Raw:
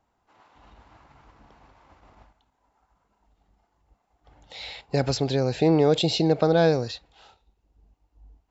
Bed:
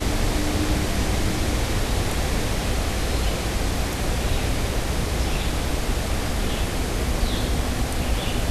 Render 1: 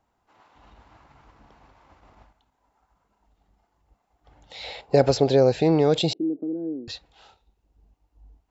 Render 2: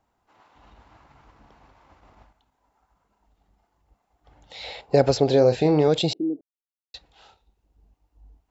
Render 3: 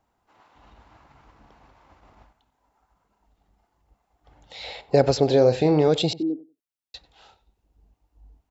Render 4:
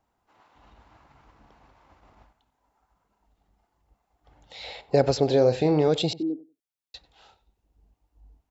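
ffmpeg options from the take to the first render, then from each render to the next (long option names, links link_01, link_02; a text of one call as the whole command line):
ffmpeg -i in.wav -filter_complex "[0:a]asettb=1/sr,asplit=3[link_01][link_02][link_03];[link_01]atrim=end=4.644[link_04];[link_02]atrim=start=4.64:end=5.52,asetpts=PTS-STARTPTS,afade=type=in:duration=0.004:curve=qsin,afade=type=out:start_time=0.876:duration=0.004:curve=qsin,equalizer=frequency=530:width=0.92:gain=9.5[link_05];[link_03]atrim=start=5.516[link_06];[link_04][link_05]acrossfade=duration=0.004:curve1=hsin:curve2=qsin[link_07];[link_07][link_06]acrossfade=duration=0.004:curve1=qsin:curve2=hsin,asettb=1/sr,asplit=3[link_08][link_09][link_10];[link_08]atrim=end=6.134[link_11];[link_09]atrim=start=6.13:end=6.88,asetpts=PTS-STARTPTS,afade=type=in:duration=0.004:curve=qsin,afade=type=out:start_time=0.746:duration=0.004:curve=qsin,asuperpass=centerf=290:order=4:qfactor=2.8[link_12];[link_10]atrim=start=6.876[link_13];[link_11][link_12]acrossfade=duration=0.004:curve1=hsin:curve2=qsin[link_14];[link_14][link_13]acrossfade=duration=0.004:curve1=qsin:curve2=hsin" out.wav
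ffmpeg -i in.wav -filter_complex "[0:a]asettb=1/sr,asplit=3[link_01][link_02][link_03];[link_01]atrim=end=5.254[link_04];[link_02]atrim=start=5.25:end=5.88,asetpts=PTS-STARTPTS,afade=type=in:duration=0.004:curve=qsin,afade=type=out:start_time=0.626:duration=0.004:curve=qsin,asplit=2[link_05][link_06];[link_06]adelay=33,volume=-9.5dB[link_07];[link_05][link_07]amix=inputs=2:normalize=0,atrim=end_sample=27783[link_08];[link_03]atrim=start=5.876[link_09];[link_04][link_08]acrossfade=duration=0.004:curve1=hsin:curve2=qsin[link_10];[link_10][link_09]acrossfade=duration=0.004:curve1=qsin:curve2=hsin,asplit=3[link_11][link_12][link_13];[link_11]atrim=end=6.41,asetpts=PTS-STARTPTS,afade=type=out:start_time=6.406:duration=0.004:curve=hsin[link_14];[link_12]atrim=start=6.41:end=6.94,asetpts=PTS-STARTPTS,volume=0[link_15];[link_13]atrim=start=6.94,asetpts=PTS-STARTPTS,afade=type=in:duration=0.004:curve=hsin[link_16];[link_14][link_15][link_16]concat=n=3:v=0:a=1" out.wav
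ffmpeg -i in.wav -filter_complex "[0:a]asplit=2[link_01][link_02];[link_02]adelay=94,lowpass=frequency=2800:poles=1,volume=-19dB,asplit=2[link_03][link_04];[link_04]adelay=94,lowpass=frequency=2800:poles=1,volume=0.17[link_05];[link_01][link_03][link_05]amix=inputs=3:normalize=0" out.wav
ffmpeg -i in.wav -af "volume=-2.5dB" out.wav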